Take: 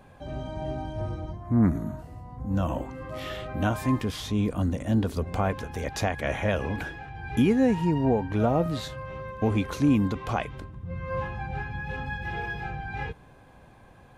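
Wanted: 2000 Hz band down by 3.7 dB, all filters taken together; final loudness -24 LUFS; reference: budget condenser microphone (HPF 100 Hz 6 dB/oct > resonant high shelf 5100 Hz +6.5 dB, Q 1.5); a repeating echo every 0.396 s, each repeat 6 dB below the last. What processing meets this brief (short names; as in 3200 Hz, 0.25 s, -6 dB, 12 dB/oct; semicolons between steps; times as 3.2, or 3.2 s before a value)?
HPF 100 Hz 6 dB/oct; bell 2000 Hz -4 dB; resonant high shelf 5100 Hz +6.5 dB, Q 1.5; feedback echo 0.396 s, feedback 50%, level -6 dB; gain +4.5 dB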